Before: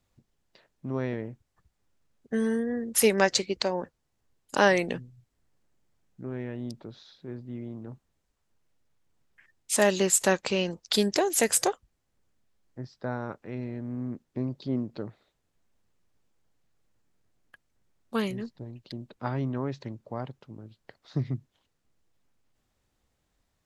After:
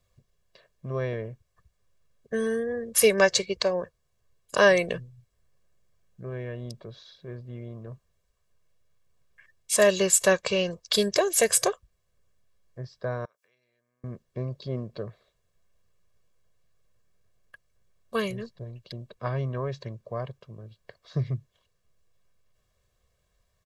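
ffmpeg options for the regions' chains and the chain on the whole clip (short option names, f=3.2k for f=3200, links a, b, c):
-filter_complex "[0:a]asettb=1/sr,asplit=3[a][b][c];[a]atrim=end=13.254[d];[b]atrim=start=13.25:end=14.04,asetpts=PTS-STARTPTS,afade=t=in:d=0.004:c=qsin,afade=t=out:st=0.786:d=0.004:c=qsin,acompressor=threshold=-47dB:ratio=3:attack=3.2:release=140:knee=1:detection=peak,aderivative[e];[c]atrim=start=14.036[f];[d][e]acrossfade=d=0.004:c1=hsin:c2=qsin[g];[g][f]acrossfade=d=0.004:c1=qsin:c2=hsin,bandreject=f=920:w=24,aecho=1:1:1.8:0.78"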